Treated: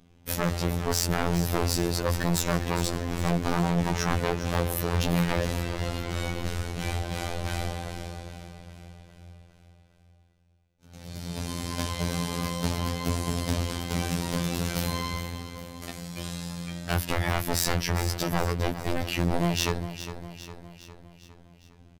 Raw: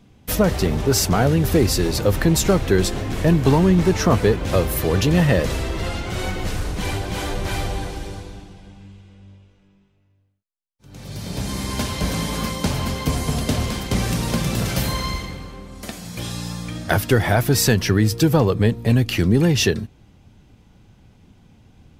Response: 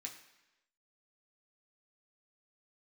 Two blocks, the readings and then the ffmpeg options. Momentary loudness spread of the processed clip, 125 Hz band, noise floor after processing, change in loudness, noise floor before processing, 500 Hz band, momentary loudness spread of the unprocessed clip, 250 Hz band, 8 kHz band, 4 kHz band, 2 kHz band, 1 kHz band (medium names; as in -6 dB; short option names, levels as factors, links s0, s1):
14 LU, -9.0 dB, -58 dBFS, -8.5 dB, -57 dBFS, -10.5 dB, 13 LU, -9.5 dB, -7.0 dB, -6.5 dB, -6.5 dB, -5.0 dB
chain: -af "aeval=exprs='0.188*(abs(mod(val(0)/0.188+3,4)-2)-1)':c=same,aecho=1:1:407|814|1221|1628|2035|2442:0.251|0.138|0.076|0.0418|0.023|0.0126,afftfilt=real='hypot(re,im)*cos(PI*b)':imag='0':win_size=2048:overlap=0.75,volume=0.708"